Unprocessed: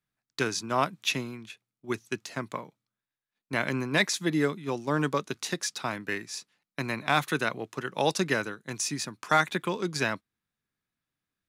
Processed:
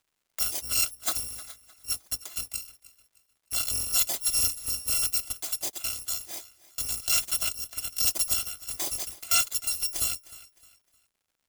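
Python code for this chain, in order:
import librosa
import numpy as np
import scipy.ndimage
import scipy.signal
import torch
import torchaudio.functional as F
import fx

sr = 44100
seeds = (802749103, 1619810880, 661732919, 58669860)

y = fx.bit_reversed(x, sr, seeds[0], block=256)
y = fx.peak_eq(y, sr, hz=7100.0, db=3.0, octaves=0.58)
y = fx.echo_feedback(y, sr, ms=307, feedback_pct=32, wet_db=-19.5)
y = fx.dynamic_eq(y, sr, hz=1800.0, q=1.3, threshold_db=-49.0, ratio=4.0, max_db=-7)
y = fx.dmg_crackle(y, sr, seeds[1], per_s=210.0, level_db=-60.0)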